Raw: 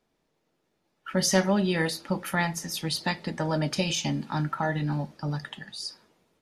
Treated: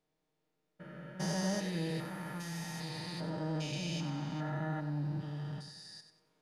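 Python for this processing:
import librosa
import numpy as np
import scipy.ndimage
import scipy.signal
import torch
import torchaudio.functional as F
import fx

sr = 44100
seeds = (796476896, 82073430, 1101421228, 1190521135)

p1 = fx.spec_steps(x, sr, hold_ms=400)
p2 = p1 + 0.65 * np.pad(p1, (int(6.5 * sr / 1000.0), 0))[:len(p1)]
p3 = p2 + fx.echo_feedback(p2, sr, ms=95, feedback_pct=32, wet_db=-10, dry=0)
y = F.gain(torch.from_numpy(p3), -9.0).numpy()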